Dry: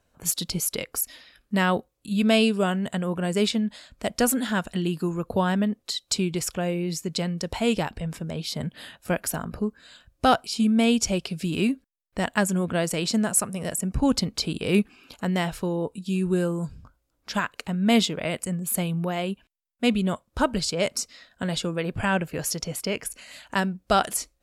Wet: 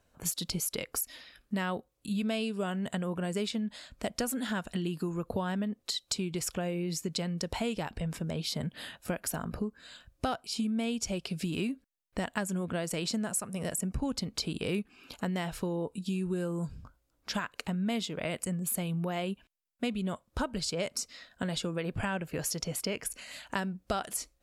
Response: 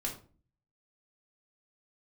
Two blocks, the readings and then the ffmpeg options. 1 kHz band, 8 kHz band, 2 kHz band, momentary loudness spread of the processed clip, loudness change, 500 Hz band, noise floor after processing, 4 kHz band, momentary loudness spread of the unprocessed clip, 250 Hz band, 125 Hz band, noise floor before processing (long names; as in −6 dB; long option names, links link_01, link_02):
−10.5 dB, −7.0 dB, −9.0 dB, 6 LU, −8.5 dB, −9.0 dB, −74 dBFS, −7.5 dB, 10 LU, −8.5 dB, −6.5 dB, −72 dBFS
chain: -af "acompressor=threshold=-29dB:ratio=5,volume=-1dB"